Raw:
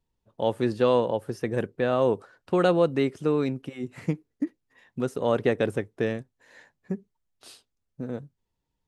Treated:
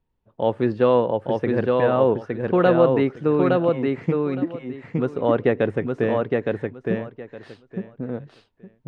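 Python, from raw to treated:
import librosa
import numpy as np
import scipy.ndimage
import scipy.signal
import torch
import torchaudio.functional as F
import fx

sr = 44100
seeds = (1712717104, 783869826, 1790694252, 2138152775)

p1 = scipy.signal.sosfilt(scipy.signal.butter(2, 2500.0, 'lowpass', fs=sr, output='sos'), x)
p2 = p1 + fx.echo_feedback(p1, sr, ms=864, feedback_pct=18, wet_db=-3, dry=0)
y = p2 * 10.0 ** (4.0 / 20.0)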